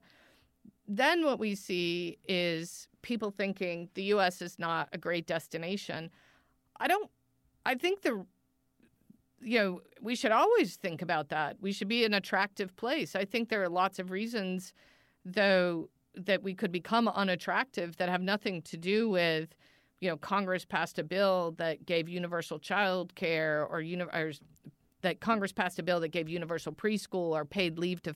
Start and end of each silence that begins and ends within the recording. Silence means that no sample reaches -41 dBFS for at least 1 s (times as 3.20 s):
8.22–9.43 s